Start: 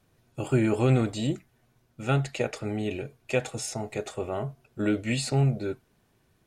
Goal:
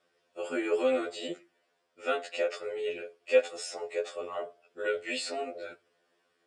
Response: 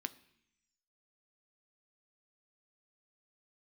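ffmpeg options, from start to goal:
-filter_complex "[0:a]highpass=450,equalizer=f=490:t=q:w=4:g=4,equalizer=f=870:t=q:w=4:g=-8,equalizer=f=2300:t=q:w=4:g=-3,equalizer=f=4000:t=q:w=4:g=-6,equalizer=f=6400:t=q:w=4:g=-10,lowpass=f=7500:w=0.5412,lowpass=f=7500:w=1.3066,asplit=2[s0][s1];[1:a]atrim=start_sample=2205,asetrate=88200,aresample=44100[s2];[s1][s2]afir=irnorm=-1:irlink=0,volume=1.33[s3];[s0][s3]amix=inputs=2:normalize=0,afftfilt=real='re*2*eq(mod(b,4),0)':imag='im*2*eq(mod(b,4),0)':win_size=2048:overlap=0.75"

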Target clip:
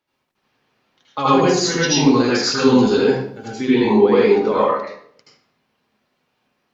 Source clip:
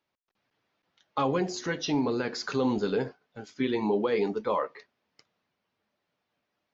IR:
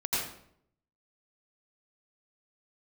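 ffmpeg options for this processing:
-filter_complex "[0:a]asettb=1/sr,asplit=3[s0][s1][s2];[s0]atrim=end=1.184[s3];[s1]atrim=start=1.18:end=3.48,asetpts=PTS-STARTPTS,afade=t=in:d=0.004:c=qsin,afade=t=out:st=2.296:d=0.004:c=qsin,highshelf=f=4000:g=9.5[s4];[s2]atrim=start=3.476[s5];[s3][s4]acrossfade=d=0.004:c1=hsin:c2=qsin[s6];[s6][s5]acrossfade=d=0.004:c1=qsin:c2=hsin[s7];[1:a]atrim=start_sample=2205,asetrate=48510,aresample=44100[s8];[s7][s8]afir=irnorm=-1:irlink=0,volume=1.78"

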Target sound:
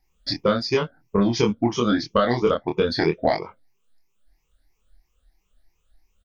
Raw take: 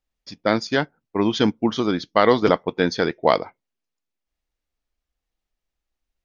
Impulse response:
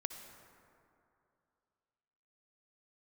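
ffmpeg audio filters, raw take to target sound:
-filter_complex "[0:a]afftfilt=real='re*pow(10,17/40*sin(2*PI*(0.76*log(max(b,1)*sr/1024/100)/log(2)-(3)*(pts-256)/sr)))':imag='im*pow(10,17/40*sin(2*PI*(0.76*log(max(b,1)*sr/1024/100)/log(2)-(3)*(pts-256)/sr)))':win_size=1024:overlap=0.75,acompressor=threshold=0.0398:ratio=4,lowshelf=f=85:g=11,asplit=2[s0][s1];[s1]adelay=25,volume=0.708[s2];[s0][s2]amix=inputs=2:normalize=0,volume=2.11"

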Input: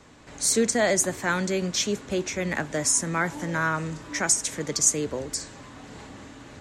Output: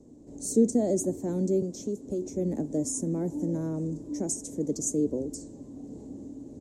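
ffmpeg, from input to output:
-filter_complex "[0:a]firequalizer=gain_entry='entry(130,0);entry(270,10);entry(1300,-30);entry(2500,-29);entry(6500,-7)':delay=0.05:min_phase=1,asettb=1/sr,asplit=3[s0][s1][s2];[s0]atrim=end=1.624[s3];[s1]atrim=start=1.62:end=2.22,asetpts=PTS-STARTPTS,afade=t=in:d=0.004:c=qsin,afade=t=out:st=0.596:d=0.004:c=qsin,acrossover=split=280|3100[s4][s5][s6];[s4]acompressor=threshold=0.0224:ratio=4[s7];[s5]acompressor=threshold=0.0355:ratio=4[s8];[s6]acompressor=threshold=0.0112:ratio=4[s9];[s7][s8][s9]amix=inputs=3:normalize=0[s10];[s2]atrim=start=2.216[s11];[s3][s10]acrossfade=d=0.004:c1=hsin:c2=qsin[s12];[s12][s11]acrossfade=d=0.004:c1=qsin:c2=hsin,volume=0.668"

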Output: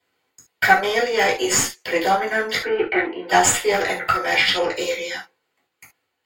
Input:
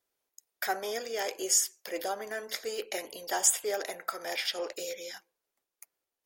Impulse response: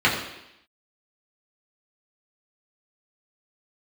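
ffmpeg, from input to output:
-filter_complex "[0:a]asplit=3[s0][s1][s2];[s0]afade=t=out:st=2.6:d=0.02[s3];[s1]highpass=260,equalizer=f=340:t=q:w=4:g=9,equalizer=f=540:t=q:w=4:g=-7,equalizer=f=1500:t=q:w=4:g=10,lowpass=f=2200:w=0.5412,lowpass=f=2200:w=1.3066,afade=t=in:st=2.6:d=0.02,afade=t=out:st=3.29:d=0.02[s4];[s2]afade=t=in:st=3.29:d=0.02[s5];[s3][s4][s5]amix=inputs=3:normalize=0,aeval=exprs='0.316*(cos(1*acos(clip(val(0)/0.316,-1,1)))-cos(1*PI/2))+0.0251*(cos(4*acos(clip(val(0)/0.316,-1,1)))-cos(4*PI/2))+0.0224*(cos(5*acos(clip(val(0)/0.316,-1,1)))-cos(5*PI/2))+0.0158*(cos(8*acos(clip(val(0)/0.316,-1,1)))-cos(8*PI/2))':c=same[s6];[1:a]atrim=start_sample=2205,atrim=end_sample=3528[s7];[s6][s7]afir=irnorm=-1:irlink=0,volume=0.631"

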